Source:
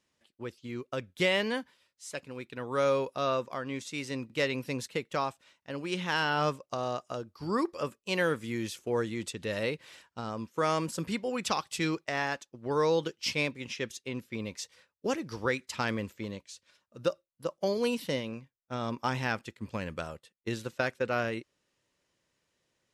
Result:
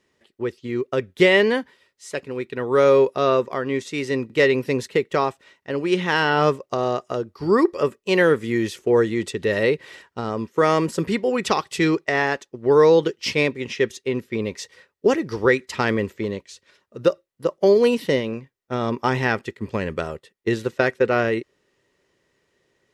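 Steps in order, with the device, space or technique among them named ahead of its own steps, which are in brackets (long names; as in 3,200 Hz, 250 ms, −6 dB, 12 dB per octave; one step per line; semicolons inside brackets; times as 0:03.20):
inside a helmet (high-shelf EQ 4,500 Hz −7 dB; hollow resonant body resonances 400/1,900 Hz, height 10 dB, ringing for 35 ms)
level +9 dB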